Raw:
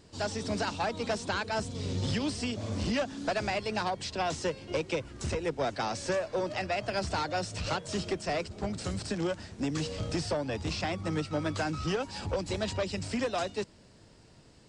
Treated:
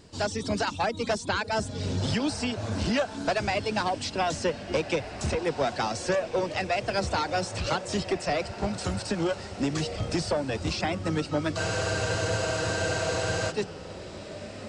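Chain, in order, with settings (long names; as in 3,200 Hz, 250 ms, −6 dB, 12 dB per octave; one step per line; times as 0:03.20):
reverb reduction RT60 0.61 s
feedback delay with all-pass diffusion 1,631 ms, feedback 42%, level −12 dB
frozen spectrum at 0:11.59, 1.92 s
level +4.5 dB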